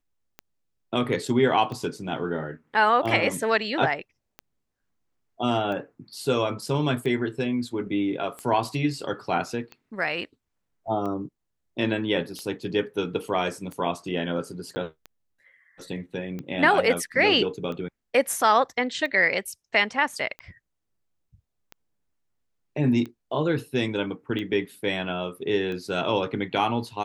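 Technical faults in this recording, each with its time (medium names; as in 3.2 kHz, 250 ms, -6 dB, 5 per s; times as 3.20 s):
tick 45 rpm -23 dBFS
14.75–14.76 s: dropout 10 ms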